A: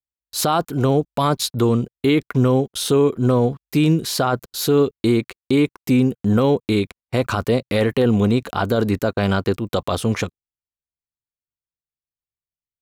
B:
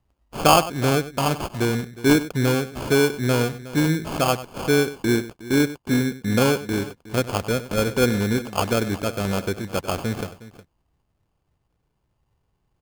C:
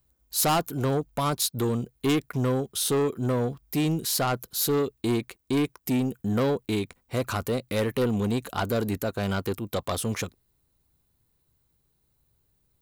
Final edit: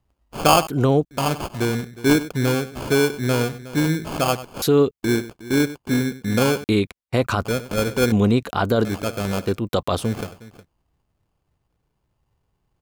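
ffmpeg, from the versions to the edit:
-filter_complex "[0:a]asplit=5[a][b][c][d][e];[1:a]asplit=6[f][g][h][i][j][k];[f]atrim=end=0.672[l];[a]atrim=start=0.668:end=1.112[m];[g]atrim=start=1.108:end=4.622[n];[b]atrim=start=4.618:end=5.032[o];[h]atrim=start=5.028:end=6.642[p];[c]atrim=start=6.638:end=7.452[q];[i]atrim=start=7.448:end=8.122[r];[d]atrim=start=8.118:end=8.852[s];[j]atrim=start=8.848:end=9.6[t];[e]atrim=start=9.36:end=10.18[u];[k]atrim=start=9.94[v];[l][m]acrossfade=d=0.004:c1=hsin:c2=hsin[w];[w][n]acrossfade=d=0.004:c1=hsin:c2=hsin[x];[x][o]acrossfade=d=0.004:c1=hsin:c2=hsin[y];[y][p]acrossfade=d=0.004:c1=hsin:c2=hsin[z];[z][q]acrossfade=d=0.004:c1=hsin:c2=hsin[aa];[aa][r]acrossfade=d=0.004:c1=hsin:c2=hsin[ab];[ab][s]acrossfade=d=0.004:c1=hsin:c2=hsin[ac];[ac][t]acrossfade=d=0.004:c1=hsin:c2=hsin[ad];[ad][u]acrossfade=d=0.24:c1=tri:c2=tri[ae];[ae][v]acrossfade=d=0.24:c1=tri:c2=tri"

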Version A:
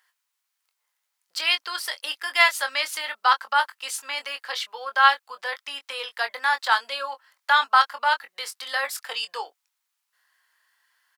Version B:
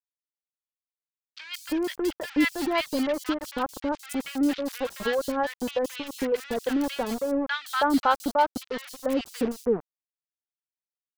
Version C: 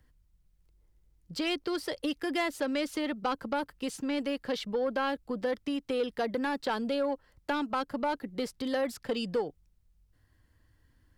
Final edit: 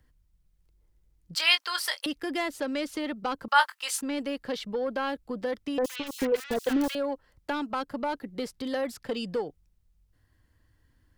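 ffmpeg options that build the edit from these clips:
-filter_complex "[0:a]asplit=2[a][b];[2:a]asplit=4[c][d][e][f];[c]atrim=end=1.352[g];[a]atrim=start=1.348:end=2.062[h];[d]atrim=start=2.058:end=3.482[i];[b]atrim=start=3.478:end=4.012[j];[e]atrim=start=4.008:end=5.782[k];[1:a]atrim=start=5.778:end=6.952[l];[f]atrim=start=6.948[m];[g][h]acrossfade=d=0.004:c1=hsin:c2=hsin[n];[n][i]acrossfade=d=0.004:c1=hsin:c2=hsin[o];[o][j]acrossfade=d=0.004:c1=hsin:c2=hsin[p];[p][k]acrossfade=d=0.004:c1=hsin:c2=hsin[q];[q][l]acrossfade=d=0.004:c1=hsin:c2=hsin[r];[r][m]acrossfade=d=0.004:c1=hsin:c2=hsin"

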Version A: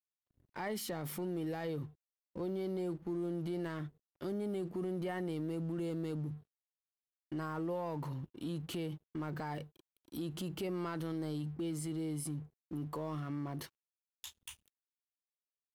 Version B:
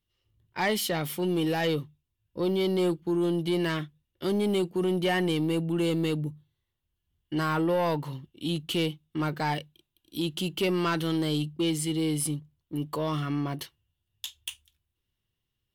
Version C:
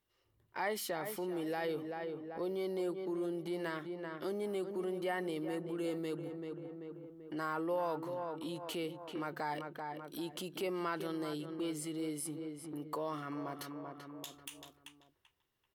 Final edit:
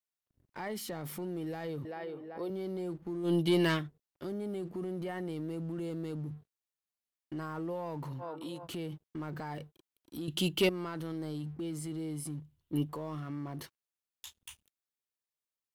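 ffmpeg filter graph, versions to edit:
-filter_complex "[2:a]asplit=2[a][b];[1:a]asplit=3[c][d][e];[0:a]asplit=6[f][g][h][i][j][k];[f]atrim=end=1.852[l];[a]atrim=start=1.848:end=2.502[m];[g]atrim=start=2.498:end=3.33[n];[c]atrim=start=3.23:end=3.84[o];[h]atrim=start=3.74:end=8.24[p];[b]atrim=start=8.18:end=8.68[q];[i]atrim=start=8.62:end=10.282[r];[d]atrim=start=10.278:end=10.692[s];[j]atrim=start=10.688:end=12.402[t];[e]atrim=start=12.398:end=12.892[u];[k]atrim=start=12.888[v];[l][m]acrossfade=d=0.004:c1=hsin:c2=hsin[w];[w][n]acrossfade=d=0.004:c1=hsin:c2=hsin[x];[x][o]acrossfade=d=0.1:c1=tri:c2=tri[y];[y][p]acrossfade=d=0.1:c1=tri:c2=tri[z];[z][q]acrossfade=d=0.06:c1=tri:c2=tri[aa];[aa][r]acrossfade=d=0.06:c1=tri:c2=tri[ab];[ab][s]acrossfade=d=0.004:c1=hsin:c2=hsin[ac];[ac][t]acrossfade=d=0.004:c1=hsin:c2=hsin[ad];[ad][u]acrossfade=d=0.004:c1=hsin:c2=hsin[ae];[ae][v]acrossfade=d=0.004:c1=hsin:c2=hsin"

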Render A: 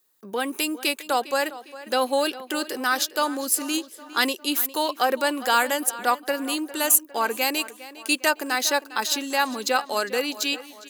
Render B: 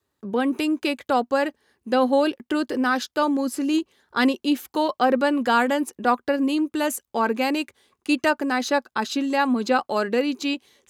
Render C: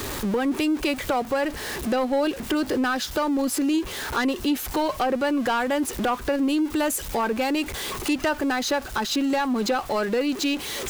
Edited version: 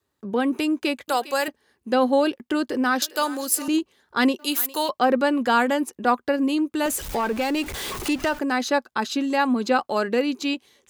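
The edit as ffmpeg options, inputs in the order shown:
-filter_complex "[0:a]asplit=3[a][b][c];[1:a]asplit=5[d][e][f][g][h];[d]atrim=end=1.082[i];[a]atrim=start=1.078:end=1.482[j];[e]atrim=start=1.478:end=3.022[k];[b]atrim=start=3.018:end=3.682[l];[f]atrim=start=3.678:end=4.392[m];[c]atrim=start=4.388:end=4.892[n];[g]atrim=start=4.888:end=6.862[o];[2:a]atrim=start=6.858:end=8.392[p];[h]atrim=start=8.388[q];[i][j]acrossfade=d=0.004:c1=hsin:c2=hsin[r];[r][k]acrossfade=d=0.004:c1=hsin:c2=hsin[s];[s][l]acrossfade=d=0.004:c1=hsin:c2=hsin[t];[t][m]acrossfade=d=0.004:c1=hsin:c2=hsin[u];[u][n]acrossfade=d=0.004:c1=hsin:c2=hsin[v];[v][o]acrossfade=d=0.004:c1=hsin:c2=hsin[w];[w][p]acrossfade=d=0.004:c1=hsin:c2=hsin[x];[x][q]acrossfade=d=0.004:c1=hsin:c2=hsin"

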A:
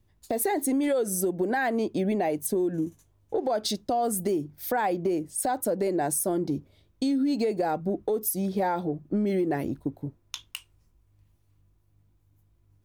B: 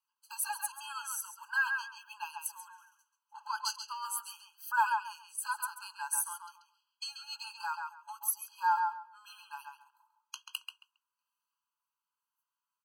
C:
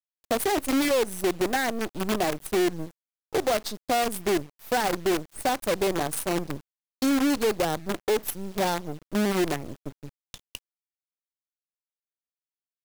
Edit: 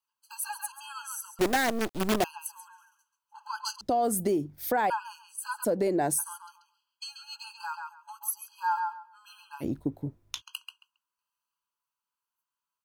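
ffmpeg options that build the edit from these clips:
-filter_complex "[0:a]asplit=3[a][b][c];[1:a]asplit=5[d][e][f][g][h];[d]atrim=end=1.392[i];[2:a]atrim=start=1.388:end=2.242[j];[e]atrim=start=2.238:end=3.812[k];[a]atrim=start=3.808:end=4.902[l];[f]atrim=start=4.898:end=5.65[m];[b]atrim=start=5.63:end=6.2[n];[g]atrim=start=6.18:end=9.64[o];[c]atrim=start=9.6:end=10.42[p];[h]atrim=start=10.38[q];[i][j]acrossfade=d=0.004:c1=hsin:c2=hsin[r];[r][k]acrossfade=d=0.004:c1=hsin:c2=hsin[s];[s][l]acrossfade=d=0.004:c1=hsin:c2=hsin[t];[t][m]acrossfade=d=0.004:c1=hsin:c2=hsin[u];[u][n]acrossfade=d=0.02:c1=tri:c2=tri[v];[v][o]acrossfade=d=0.02:c1=tri:c2=tri[w];[w][p]acrossfade=d=0.04:c1=tri:c2=tri[x];[x][q]acrossfade=d=0.04:c1=tri:c2=tri"

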